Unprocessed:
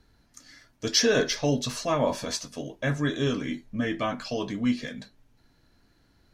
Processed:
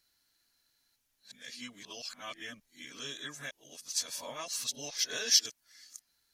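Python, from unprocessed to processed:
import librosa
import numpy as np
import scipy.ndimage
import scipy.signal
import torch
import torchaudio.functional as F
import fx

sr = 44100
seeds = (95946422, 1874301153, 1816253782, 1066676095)

y = np.flip(x).copy()
y = F.preemphasis(torch.from_numpy(y), 0.97).numpy()
y = y * librosa.db_to_amplitude(2.0)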